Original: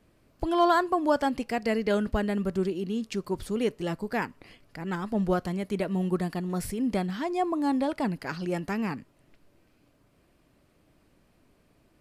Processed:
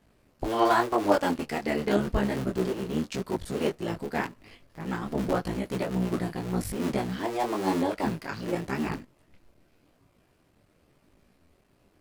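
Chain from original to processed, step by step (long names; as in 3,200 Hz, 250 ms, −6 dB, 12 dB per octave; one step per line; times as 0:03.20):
sub-harmonics by changed cycles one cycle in 3, muted
micro pitch shift up and down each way 31 cents
level +5 dB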